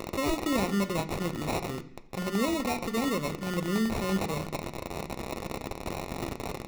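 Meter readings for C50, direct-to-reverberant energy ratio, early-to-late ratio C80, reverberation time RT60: 15.0 dB, 7.0 dB, 18.0 dB, 0.65 s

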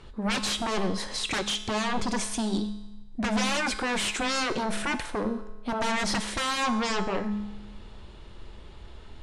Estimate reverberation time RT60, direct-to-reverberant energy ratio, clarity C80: 1.0 s, 9.0 dB, 14.0 dB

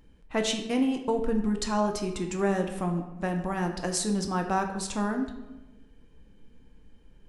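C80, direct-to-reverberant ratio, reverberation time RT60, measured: 10.5 dB, 3.5 dB, 1.1 s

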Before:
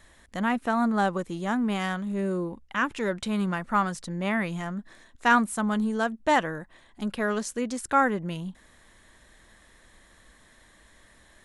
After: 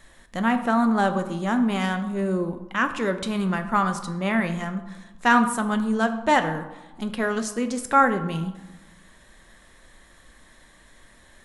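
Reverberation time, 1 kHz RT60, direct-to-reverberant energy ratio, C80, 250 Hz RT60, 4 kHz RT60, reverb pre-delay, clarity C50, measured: 1.1 s, 1.2 s, 7.0 dB, 13.0 dB, 1.3 s, 0.60 s, 4 ms, 11.0 dB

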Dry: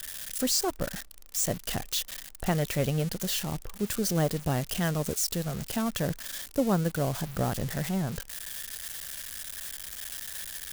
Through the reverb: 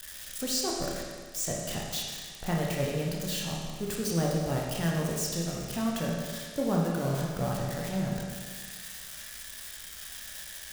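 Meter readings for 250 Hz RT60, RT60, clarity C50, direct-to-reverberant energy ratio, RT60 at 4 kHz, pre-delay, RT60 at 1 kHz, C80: 1.7 s, 1.7 s, 0.0 dB, -2.5 dB, 1.7 s, 17 ms, 1.7 s, 2.0 dB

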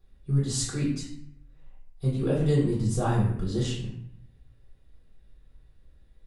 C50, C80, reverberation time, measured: 3.0 dB, 6.5 dB, 0.65 s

